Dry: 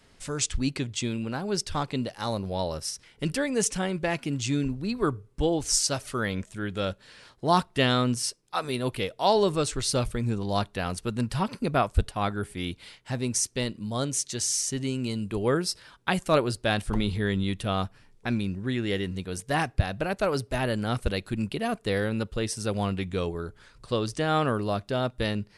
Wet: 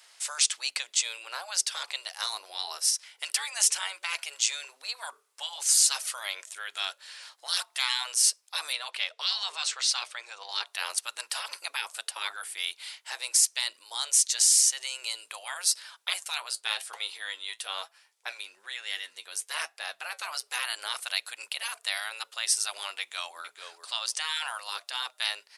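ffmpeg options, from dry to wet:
ffmpeg -i in.wav -filter_complex "[0:a]asettb=1/sr,asplit=3[link_01][link_02][link_03];[link_01]atrim=end=8.734[link_04];[link_02]atrim=start=8.73:end=10.67,asetpts=PTS-STARTPTS,afade=type=in:duration=0.004:curve=qsin,afade=type=out:start_time=1.936:duration=0.004:curve=qsin,lowpass=5100[link_05];[link_03]atrim=start=10.666[link_06];[link_04][link_05]acrossfade=duration=0.004:curve1=hsin:curve2=qsin[link_07];[link_07][link_06]acrossfade=duration=0.004:curve1=qsin:curve2=hsin,asettb=1/sr,asplit=3[link_08][link_09][link_10];[link_08]atrim=end=16.134[link_11];[link_09]atrim=start=16.13:end=20.43,asetpts=PTS-STARTPTS,afade=type=in:duration=0.004:curve=qsin,afade=type=out:start_time=4.296:duration=0.004:curve=qsin,flanger=delay=5.8:depth=3.3:regen=60:speed=1.1:shape=sinusoidal[link_12];[link_10]atrim=start=20.426[link_13];[link_11][link_12]acrossfade=duration=0.004:curve1=hsin:curve2=qsin[link_14];[link_14][link_13]acrossfade=duration=0.004:curve1=qsin:curve2=hsin,asplit=2[link_15][link_16];[link_16]afade=type=in:start_time=23:duration=0.01,afade=type=out:start_time=23.4:duration=0.01,aecho=0:1:440|880:0.281838|0.0281838[link_17];[link_15][link_17]amix=inputs=2:normalize=0,afftfilt=real='re*lt(hypot(re,im),0.1)':imag='im*lt(hypot(re,im),0.1)':win_size=1024:overlap=0.75,highpass=frequency=690:width=0.5412,highpass=frequency=690:width=1.3066,highshelf=frequency=2800:gain=11" out.wav

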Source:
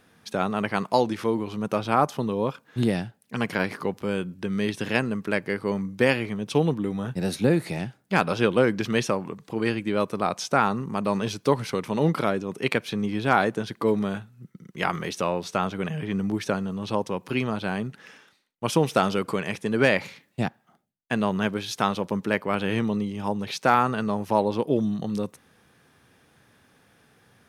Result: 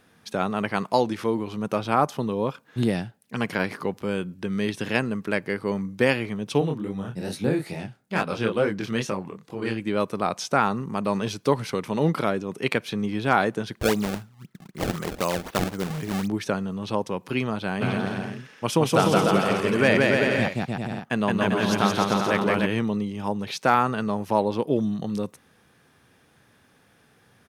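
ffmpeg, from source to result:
ffmpeg -i in.wav -filter_complex "[0:a]asplit=3[link_01][link_02][link_03];[link_01]afade=type=out:start_time=6.6:duration=0.02[link_04];[link_02]flanger=delay=19.5:depth=7.4:speed=2.3,afade=type=in:start_time=6.6:duration=0.02,afade=type=out:start_time=9.79:duration=0.02[link_05];[link_03]afade=type=in:start_time=9.79:duration=0.02[link_06];[link_04][link_05][link_06]amix=inputs=3:normalize=0,asettb=1/sr,asplit=3[link_07][link_08][link_09];[link_07]atrim=end=13.794[link_10];[link_08]atrim=start=13.79:end=16.28,asetpts=PTS-STARTPTS,afade=type=in:duration=0.004:curve=qsin,afade=type=out:start_time=2.486:duration=0.004:curve=qsin,acrusher=samples=26:mix=1:aa=0.000001:lfo=1:lforange=41.6:lforate=3.9[link_11];[link_09]atrim=start=16.276[link_12];[link_10][link_11]acrossfade=duration=0.004:curve1=hsin:curve2=qsin[link_13];[link_13][link_12]acrossfade=duration=0.004:curve1=qsin:curve2=hsin,asplit=3[link_14][link_15][link_16];[link_14]afade=type=out:start_time=17.8:duration=0.02[link_17];[link_15]aecho=1:1:170|297.5|393.1|464.8|518.6|559:0.794|0.631|0.501|0.398|0.316|0.251,afade=type=in:start_time=17.8:duration=0.02,afade=type=out:start_time=22.65:duration=0.02[link_18];[link_16]afade=type=in:start_time=22.65:duration=0.02[link_19];[link_17][link_18][link_19]amix=inputs=3:normalize=0" out.wav

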